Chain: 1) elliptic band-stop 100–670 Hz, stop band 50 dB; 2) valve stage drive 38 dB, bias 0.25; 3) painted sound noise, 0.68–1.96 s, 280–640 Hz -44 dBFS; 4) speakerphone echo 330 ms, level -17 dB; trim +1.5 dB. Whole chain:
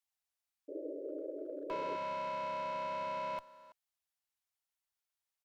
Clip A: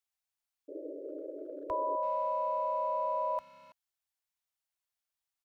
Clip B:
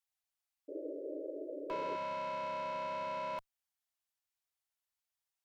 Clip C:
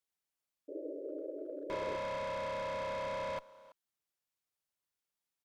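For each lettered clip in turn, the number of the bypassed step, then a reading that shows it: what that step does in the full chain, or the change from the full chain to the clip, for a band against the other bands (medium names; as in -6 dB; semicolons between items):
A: 2, momentary loudness spread change +4 LU; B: 4, echo-to-direct -27.5 dB to none; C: 1, 1 kHz band -6.0 dB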